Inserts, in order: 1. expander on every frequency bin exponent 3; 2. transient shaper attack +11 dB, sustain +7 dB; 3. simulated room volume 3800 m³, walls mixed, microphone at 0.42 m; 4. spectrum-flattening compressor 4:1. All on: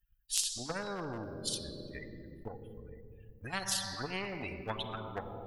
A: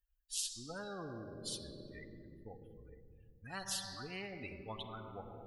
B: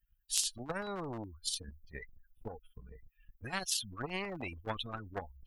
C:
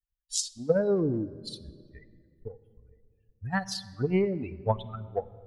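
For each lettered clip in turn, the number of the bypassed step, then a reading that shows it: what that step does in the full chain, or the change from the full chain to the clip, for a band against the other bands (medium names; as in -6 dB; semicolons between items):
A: 2, crest factor change -3.0 dB; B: 3, momentary loudness spread change +1 LU; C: 4, 500 Hz band +10.5 dB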